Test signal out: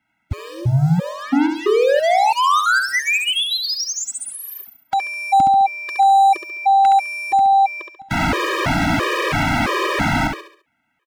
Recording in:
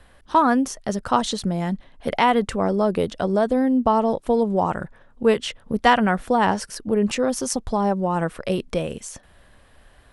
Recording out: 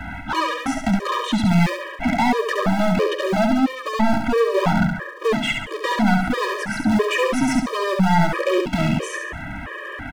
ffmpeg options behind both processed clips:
ffmpeg -i in.wav -filter_complex "[0:a]firequalizer=gain_entry='entry(150,0);entry(230,-4);entry(2100,-1);entry(4400,-23)':delay=0.05:min_phase=1,asplit=2[link_01][link_02];[link_02]acrusher=bits=4:mode=log:mix=0:aa=0.000001,volume=-10dB[link_03];[link_01][link_03]amix=inputs=2:normalize=0,acrossover=split=410|1200|5900[link_04][link_05][link_06][link_07];[link_04]acompressor=threshold=-30dB:ratio=4[link_08];[link_05]acompressor=threshold=-24dB:ratio=4[link_09];[link_06]acompressor=threshold=-39dB:ratio=4[link_10];[link_07]acompressor=threshold=-51dB:ratio=4[link_11];[link_08][link_09][link_10][link_11]amix=inputs=4:normalize=0,alimiter=limit=-18.5dB:level=0:latency=1:release=393,acontrast=52,lowshelf=frequency=380:width_type=q:width=1.5:gain=7.5,asplit=2[link_12][link_13];[link_13]highpass=frequency=720:poles=1,volume=31dB,asoftclip=type=tanh:threshold=-5.5dB[link_14];[link_12][link_14]amix=inputs=2:normalize=0,lowpass=frequency=3600:poles=1,volume=-6dB,asoftclip=type=tanh:threshold=-11.5dB,asplit=2[link_15][link_16];[link_16]aecho=0:1:69|138|207|276|345:0.562|0.231|0.0945|0.0388|0.0159[link_17];[link_15][link_17]amix=inputs=2:normalize=0,afftfilt=real='re*gt(sin(2*PI*1.5*pts/sr)*(1-2*mod(floor(b*sr/1024/320),2)),0)':imag='im*gt(sin(2*PI*1.5*pts/sr)*(1-2*mod(floor(b*sr/1024/320),2)),0)':win_size=1024:overlap=0.75,volume=-1.5dB" out.wav

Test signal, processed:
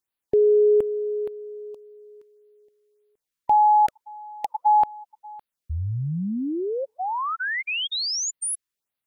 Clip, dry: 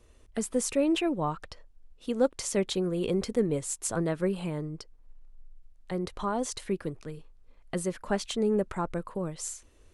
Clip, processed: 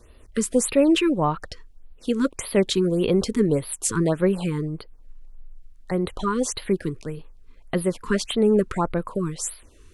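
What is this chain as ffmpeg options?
ffmpeg -i in.wav -af "afftfilt=real='re*(1-between(b*sr/1024,610*pow(7200/610,0.5+0.5*sin(2*PI*1.7*pts/sr))/1.41,610*pow(7200/610,0.5+0.5*sin(2*PI*1.7*pts/sr))*1.41))':imag='im*(1-between(b*sr/1024,610*pow(7200/610,0.5+0.5*sin(2*PI*1.7*pts/sr))/1.41,610*pow(7200/610,0.5+0.5*sin(2*PI*1.7*pts/sr))*1.41))':win_size=1024:overlap=0.75,volume=8dB" out.wav

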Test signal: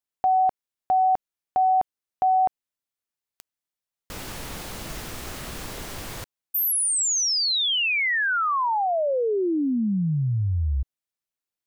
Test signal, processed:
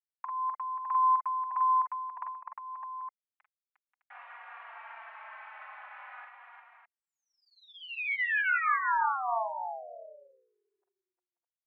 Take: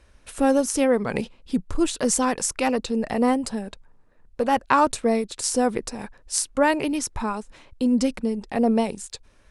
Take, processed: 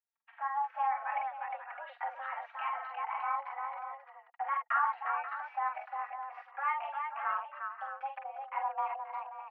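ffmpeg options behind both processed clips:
ffmpeg -i in.wav -filter_complex "[0:a]agate=range=-33dB:threshold=-42dB:ratio=3:release=23:detection=rms,bandreject=frequency=1800:width=24,acompressor=threshold=-21dB:ratio=6:attack=17:release=151:knee=1:detection=peak,asoftclip=type=hard:threshold=-15.5dB,asplit=2[link_01][link_02];[link_02]aecho=0:1:44|49|355|534|609:0.531|0.355|0.562|0.282|0.335[link_03];[link_01][link_03]amix=inputs=2:normalize=0,highpass=frequency=510:width_type=q:width=0.5412,highpass=frequency=510:width_type=q:width=1.307,lowpass=frequency=2000:width_type=q:width=0.5176,lowpass=frequency=2000:width_type=q:width=0.7071,lowpass=frequency=2000:width_type=q:width=1.932,afreqshift=280,asplit=2[link_04][link_05];[link_05]adelay=3.8,afreqshift=-0.44[link_06];[link_04][link_06]amix=inputs=2:normalize=1,volume=-4dB" out.wav

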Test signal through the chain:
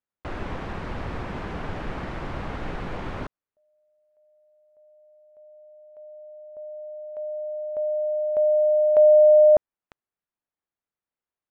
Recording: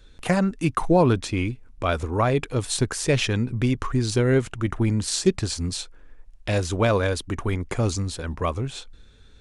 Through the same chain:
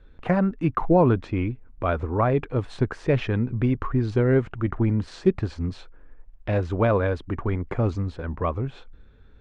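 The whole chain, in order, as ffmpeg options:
ffmpeg -i in.wav -af "lowpass=1700" out.wav

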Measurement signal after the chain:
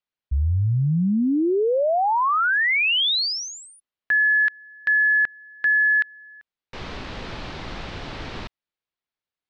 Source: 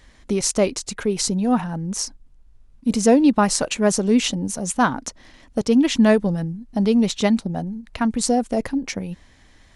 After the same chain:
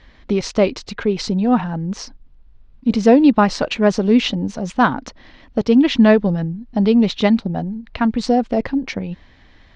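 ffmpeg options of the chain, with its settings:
ffmpeg -i in.wav -af "lowpass=frequency=4400:width=0.5412,lowpass=frequency=4400:width=1.3066,volume=3.5dB" out.wav

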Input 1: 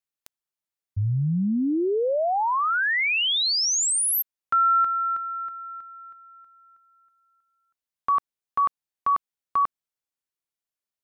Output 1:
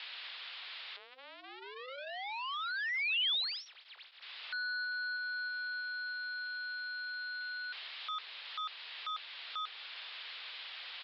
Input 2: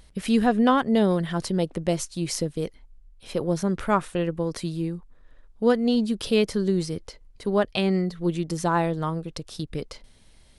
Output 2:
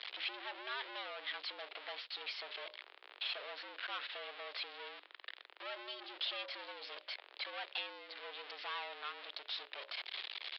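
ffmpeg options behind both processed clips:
ffmpeg -i in.wav -filter_complex "[0:a]aeval=exprs='val(0)+0.5*0.0447*sgn(val(0))':channel_layout=same,bandreject=frequency=60:width_type=h:width=6,bandreject=frequency=120:width_type=h:width=6,bandreject=frequency=180:width_type=h:width=6,bandreject=frequency=240:width_type=h:width=6,bandreject=frequency=300:width_type=h:width=6,bandreject=frequency=360:width_type=h:width=6,bandreject=frequency=420:width_type=h:width=6,bandreject=frequency=480:width_type=h:width=6,asplit=2[link_01][link_02];[link_02]acompressor=threshold=-28dB:ratio=12:attack=6.2:release=600:knee=6:detection=peak,volume=1dB[link_03];[link_01][link_03]amix=inputs=2:normalize=0,acrusher=bits=7:mix=0:aa=0.000001,aresample=11025,asoftclip=type=tanh:threshold=-23.5dB,aresample=44100,aderivative,highpass=frequency=240:width_type=q:width=0.5412,highpass=frequency=240:width_type=q:width=1.307,lowpass=frequency=3600:width_type=q:width=0.5176,lowpass=frequency=3600:width_type=q:width=0.7071,lowpass=frequency=3600:width_type=q:width=1.932,afreqshift=130,volume=1.5dB" out.wav

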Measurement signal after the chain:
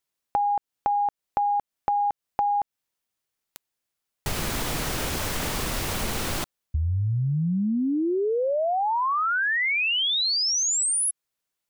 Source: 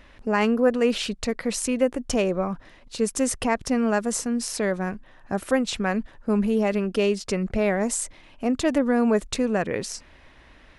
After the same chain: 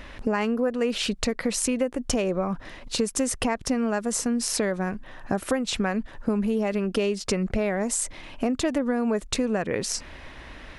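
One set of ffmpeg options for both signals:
ffmpeg -i in.wav -af "acompressor=threshold=-32dB:ratio=5,volume=9dB" out.wav

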